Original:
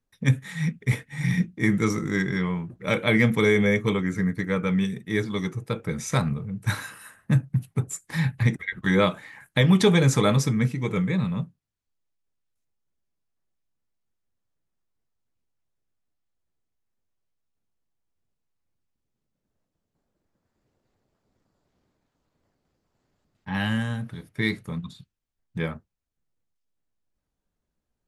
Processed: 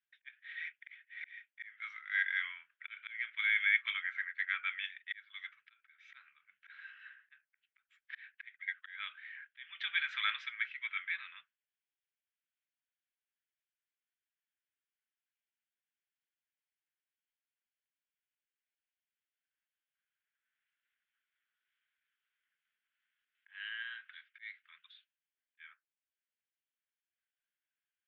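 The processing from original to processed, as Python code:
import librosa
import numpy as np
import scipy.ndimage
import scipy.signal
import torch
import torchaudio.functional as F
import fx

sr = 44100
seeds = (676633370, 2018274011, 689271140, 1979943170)

y = fx.auto_swell(x, sr, attack_ms=632.0)
y = scipy.signal.sosfilt(scipy.signal.ellip(3, 1.0, 70, [1500.0, 3300.0], 'bandpass', fs=sr, output='sos'), y)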